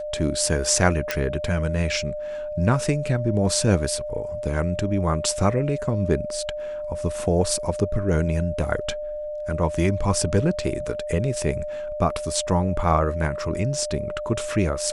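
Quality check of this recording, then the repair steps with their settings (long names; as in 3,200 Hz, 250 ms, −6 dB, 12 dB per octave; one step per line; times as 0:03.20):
whistle 600 Hz −28 dBFS
0:01.11: click −7 dBFS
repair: click removal
notch filter 600 Hz, Q 30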